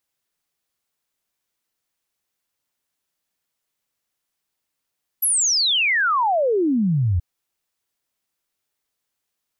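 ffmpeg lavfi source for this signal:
-f lavfi -i "aevalsrc='0.158*clip(min(t,1.98-t)/0.01,0,1)*sin(2*PI*12000*1.98/log(81/12000)*(exp(log(81/12000)*t/1.98)-1))':d=1.98:s=44100"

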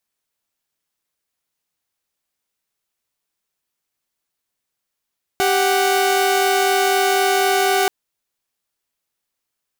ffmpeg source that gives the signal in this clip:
-f lavfi -i "aevalsrc='0.178*((2*mod(392*t,1)-1)+(2*mod(739.99*t,1)-1))':d=2.48:s=44100"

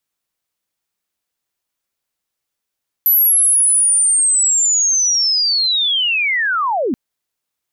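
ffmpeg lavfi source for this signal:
-f lavfi -i "aevalsrc='pow(10,(-9-6*t/3.88)/20)*sin(2*PI*(12000*t-11790*t*t/(2*3.88)))':d=3.88:s=44100"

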